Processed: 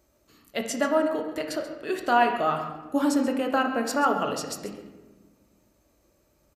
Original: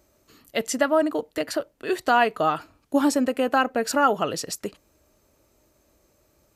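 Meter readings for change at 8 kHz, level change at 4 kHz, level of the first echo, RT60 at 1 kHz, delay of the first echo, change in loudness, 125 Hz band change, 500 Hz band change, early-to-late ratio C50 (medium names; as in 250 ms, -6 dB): -4.0 dB, -3.5 dB, -14.5 dB, 1.2 s, 134 ms, -2.5 dB, -1.0 dB, -3.0 dB, 6.0 dB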